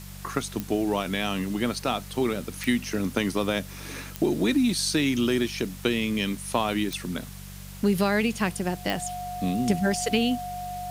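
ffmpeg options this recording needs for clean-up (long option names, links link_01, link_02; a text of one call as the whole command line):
ffmpeg -i in.wav -af "adeclick=threshold=4,bandreject=frequency=48:width_type=h:width=4,bandreject=frequency=96:width_type=h:width=4,bandreject=frequency=144:width_type=h:width=4,bandreject=frequency=192:width_type=h:width=4,bandreject=frequency=720:width=30,afftdn=noise_reduction=30:noise_floor=-40" out.wav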